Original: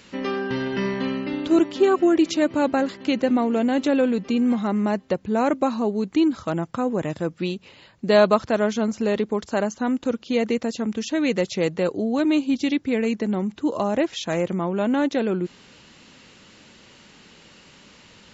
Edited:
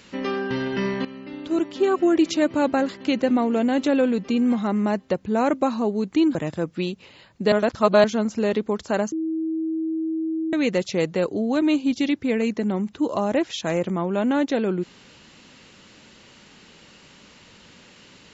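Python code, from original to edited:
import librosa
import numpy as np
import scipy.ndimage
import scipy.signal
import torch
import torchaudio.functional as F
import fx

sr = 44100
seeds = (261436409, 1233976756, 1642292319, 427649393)

y = fx.edit(x, sr, fx.fade_in_from(start_s=1.05, length_s=1.18, floor_db=-14.5),
    fx.cut(start_s=6.35, length_s=0.63),
    fx.reverse_span(start_s=8.15, length_s=0.52),
    fx.bleep(start_s=9.75, length_s=1.41, hz=321.0, db=-22.5), tone=tone)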